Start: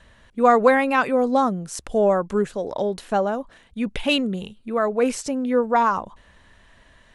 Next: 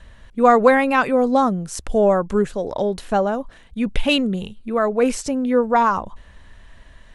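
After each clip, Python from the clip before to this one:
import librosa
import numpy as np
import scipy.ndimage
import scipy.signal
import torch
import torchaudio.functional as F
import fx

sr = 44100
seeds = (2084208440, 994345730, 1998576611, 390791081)

y = fx.low_shelf(x, sr, hz=82.0, db=11.5)
y = y * 10.0 ** (2.0 / 20.0)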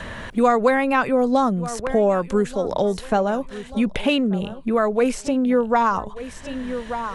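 y = fx.echo_feedback(x, sr, ms=1185, feedback_pct=28, wet_db=-21)
y = fx.band_squash(y, sr, depth_pct=70)
y = y * 10.0 ** (-1.5 / 20.0)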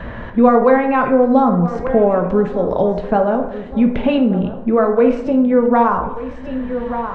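y = fx.spacing_loss(x, sr, db_at_10k=41)
y = y + 10.0 ** (-22.5 / 20.0) * np.pad(y, (int(1027 * sr / 1000.0), 0))[:len(y)]
y = fx.rev_plate(y, sr, seeds[0], rt60_s=0.78, hf_ratio=0.55, predelay_ms=0, drr_db=4.0)
y = y * 10.0 ** (6.0 / 20.0)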